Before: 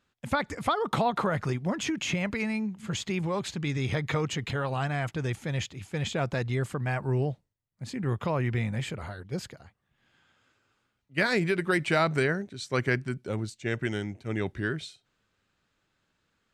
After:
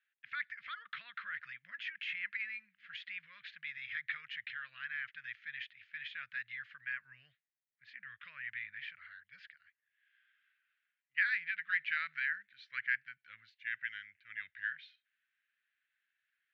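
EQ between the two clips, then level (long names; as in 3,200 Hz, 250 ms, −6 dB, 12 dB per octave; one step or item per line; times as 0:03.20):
elliptic high-pass filter 1,700 Hz, stop band 50 dB
high-frequency loss of the air 310 metres
head-to-tape spacing loss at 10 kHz 40 dB
+9.0 dB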